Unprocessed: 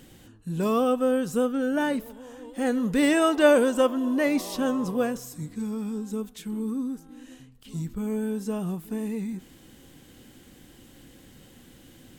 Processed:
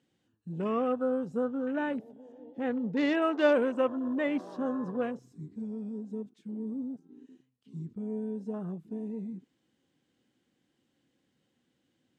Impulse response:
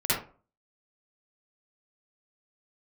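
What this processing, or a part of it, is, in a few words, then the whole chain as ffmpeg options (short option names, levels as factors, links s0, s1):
over-cleaned archive recording: -filter_complex "[0:a]asettb=1/sr,asplit=3[s0][s1][s2];[s0]atrim=end=2.324[s3];[s1]atrim=start=2.32:end=3.22,asetpts=PTS-STARTPTS,afade=t=in:d=0.004:c=qsin,afade=t=out:st=0.896:d=0.004:c=qsin,lowpass=5000[s4];[s2]atrim=start=3.216[s5];[s3][s4]acrossfade=d=0.004:c1=hsin:c2=qsin[s6];[s6][s5]acrossfade=d=0.004:c1=qsin:c2=hsin,highpass=130,lowpass=6200,afwtdn=0.0158,volume=0.501"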